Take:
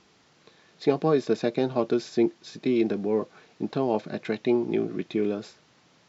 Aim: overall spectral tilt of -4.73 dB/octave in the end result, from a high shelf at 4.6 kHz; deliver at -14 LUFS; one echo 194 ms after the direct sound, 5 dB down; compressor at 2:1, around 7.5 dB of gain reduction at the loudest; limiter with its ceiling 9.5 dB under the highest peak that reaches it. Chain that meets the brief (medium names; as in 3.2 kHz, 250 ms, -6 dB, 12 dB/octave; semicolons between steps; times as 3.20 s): treble shelf 4.6 kHz +5.5 dB; compression 2:1, threshold -31 dBFS; peak limiter -27 dBFS; delay 194 ms -5 dB; trim +23 dB